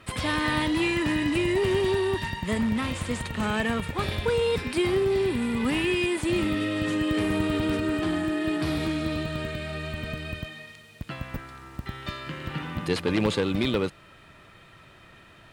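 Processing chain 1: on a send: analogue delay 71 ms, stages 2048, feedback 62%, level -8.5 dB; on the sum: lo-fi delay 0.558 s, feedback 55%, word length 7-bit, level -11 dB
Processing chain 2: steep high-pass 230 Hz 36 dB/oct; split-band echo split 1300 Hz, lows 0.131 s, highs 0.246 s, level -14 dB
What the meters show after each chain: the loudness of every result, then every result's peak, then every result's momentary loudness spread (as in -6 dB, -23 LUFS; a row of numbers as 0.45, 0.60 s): -25.5, -27.0 LUFS; -9.5, -12.5 dBFS; 14, 15 LU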